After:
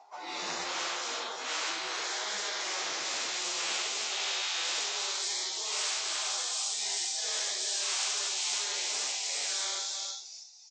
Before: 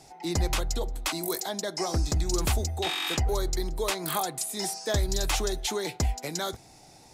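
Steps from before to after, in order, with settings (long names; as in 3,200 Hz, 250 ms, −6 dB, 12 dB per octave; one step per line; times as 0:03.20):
random phases in long frames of 200 ms
noise gate with hold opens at −41 dBFS
high-pass filter 660 Hz 12 dB per octave
parametric band 1,800 Hz −7 dB 0.91 octaves
in parallel at +3 dB: downward compressor 16 to 1, threshold −40 dBFS, peak gain reduction 14 dB
on the sum: band-pass filter sweep 1,000 Hz → 5,600 Hz, 0:00.29–0:03.86
time stretch by phase vocoder 1.5×
on a send: single-tap delay 325 ms −12.5 dB
on the sum: downsampling to 16,000 Hz
every bin compressed towards the loudest bin 4 to 1
level +2 dB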